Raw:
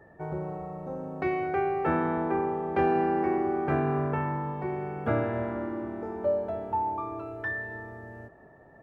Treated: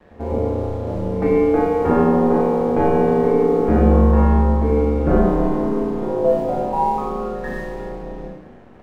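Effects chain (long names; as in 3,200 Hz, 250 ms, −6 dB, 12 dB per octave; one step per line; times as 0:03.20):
tilt shelving filter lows +9.5 dB, about 910 Hz
in parallel at +1.5 dB: brickwall limiter −17 dBFS, peak gain reduction 8 dB
on the sum: ring modulation 76 Hz
dead-zone distortion −47.5 dBFS
backwards echo 90 ms −20 dB
four-comb reverb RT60 0.85 s, combs from 29 ms, DRR −3 dB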